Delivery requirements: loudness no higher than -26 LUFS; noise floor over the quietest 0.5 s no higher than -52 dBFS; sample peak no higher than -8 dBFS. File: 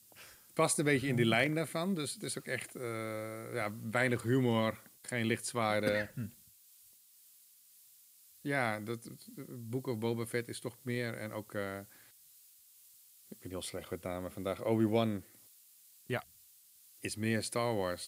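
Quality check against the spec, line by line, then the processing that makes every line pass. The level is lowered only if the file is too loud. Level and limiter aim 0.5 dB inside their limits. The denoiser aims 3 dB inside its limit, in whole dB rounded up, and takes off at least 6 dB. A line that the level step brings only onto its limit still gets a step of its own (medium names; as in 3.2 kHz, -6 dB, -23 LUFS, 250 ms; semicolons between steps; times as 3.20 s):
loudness -35.0 LUFS: pass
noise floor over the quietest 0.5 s -62 dBFS: pass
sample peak -15.0 dBFS: pass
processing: none needed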